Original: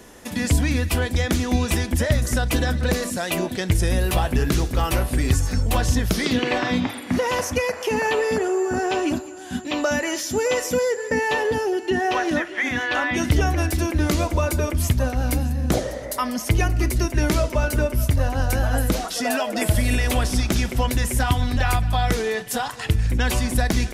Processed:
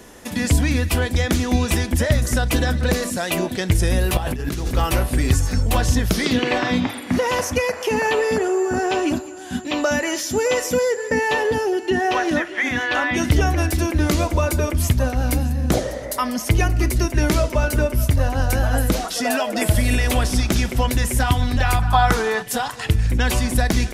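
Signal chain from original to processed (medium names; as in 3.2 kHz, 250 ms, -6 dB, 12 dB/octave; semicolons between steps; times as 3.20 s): 4.17–4.71 s: compressor with a negative ratio -26 dBFS, ratio -1; 21.79–22.43 s: high-order bell 1.1 kHz +9.5 dB 1.2 oct; trim +2 dB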